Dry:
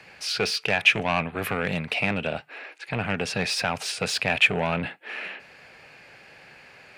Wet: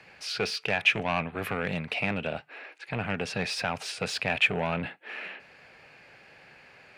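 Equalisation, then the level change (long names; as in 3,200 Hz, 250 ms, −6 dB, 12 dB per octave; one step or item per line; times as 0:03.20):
high-shelf EQ 5,700 Hz −6 dB
−3.5 dB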